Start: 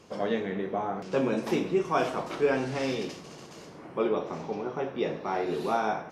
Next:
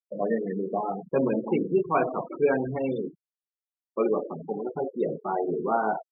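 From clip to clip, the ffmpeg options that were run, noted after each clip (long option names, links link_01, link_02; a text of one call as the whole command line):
ffmpeg -i in.wav -af "agate=range=-10dB:threshold=-39dB:ratio=16:detection=peak,afftfilt=real='re*gte(hypot(re,im),0.0562)':imag='im*gte(hypot(re,im),0.0562)':win_size=1024:overlap=0.75,volume=2.5dB" out.wav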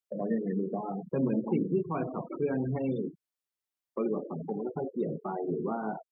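ffmpeg -i in.wav -filter_complex "[0:a]acrossover=split=270[link_01][link_02];[link_02]acompressor=threshold=-39dB:ratio=4[link_03];[link_01][link_03]amix=inputs=2:normalize=0,volume=2.5dB" out.wav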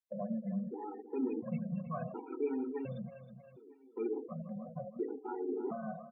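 ffmpeg -i in.wav -af "aecho=1:1:318|636|954|1272|1590:0.251|0.123|0.0603|0.0296|0.0145,afftfilt=real='re*gt(sin(2*PI*0.7*pts/sr)*(1-2*mod(floor(b*sr/1024/250),2)),0)':imag='im*gt(sin(2*PI*0.7*pts/sr)*(1-2*mod(floor(b*sr/1024/250),2)),0)':win_size=1024:overlap=0.75,volume=-4dB" out.wav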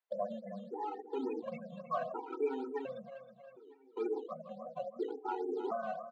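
ffmpeg -i in.wav -filter_complex "[0:a]asplit=2[link_01][link_02];[link_02]acrusher=samples=9:mix=1:aa=0.000001:lfo=1:lforange=9:lforate=3.6,volume=-11dB[link_03];[link_01][link_03]amix=inputs=2:normalize=0,highpass=570,lowpass=2600,volume=5.5dB" out.wav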